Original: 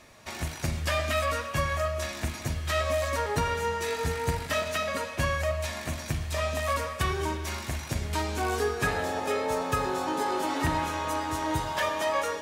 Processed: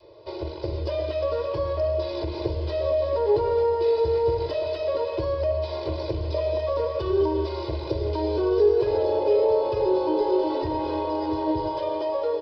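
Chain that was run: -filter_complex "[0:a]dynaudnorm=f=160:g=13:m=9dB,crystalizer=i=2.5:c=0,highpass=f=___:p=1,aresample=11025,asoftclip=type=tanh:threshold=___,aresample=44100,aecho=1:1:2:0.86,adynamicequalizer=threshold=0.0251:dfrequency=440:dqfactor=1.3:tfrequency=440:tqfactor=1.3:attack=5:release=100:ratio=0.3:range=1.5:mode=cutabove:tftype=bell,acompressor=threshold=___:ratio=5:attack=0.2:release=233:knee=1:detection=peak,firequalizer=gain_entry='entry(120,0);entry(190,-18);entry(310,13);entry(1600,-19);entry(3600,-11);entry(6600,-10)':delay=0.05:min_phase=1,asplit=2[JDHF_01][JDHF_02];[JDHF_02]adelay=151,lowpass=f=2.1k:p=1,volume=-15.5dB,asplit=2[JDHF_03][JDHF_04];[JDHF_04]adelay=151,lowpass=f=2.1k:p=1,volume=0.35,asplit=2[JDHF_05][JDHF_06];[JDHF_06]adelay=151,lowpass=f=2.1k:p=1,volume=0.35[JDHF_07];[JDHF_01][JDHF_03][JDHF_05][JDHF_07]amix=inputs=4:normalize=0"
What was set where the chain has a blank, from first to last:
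100, -12dB, -22dB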